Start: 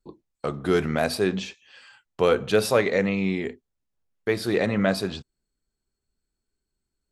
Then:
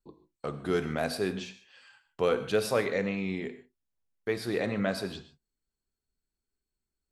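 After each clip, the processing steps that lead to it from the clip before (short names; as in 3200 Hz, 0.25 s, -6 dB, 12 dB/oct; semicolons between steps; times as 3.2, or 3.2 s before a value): non-linear reverb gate 0.17 s flat, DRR 10.5 dB; gain -7 dB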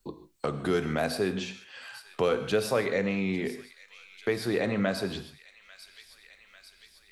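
in parallel at -1 dB: compressor, threshold -36 dBFS, peak gain reduction 14 dB; on the sum: thin delay 0.846 s, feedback 56%, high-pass 3000 Hz, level -16.5 dB; three-band squash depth 40%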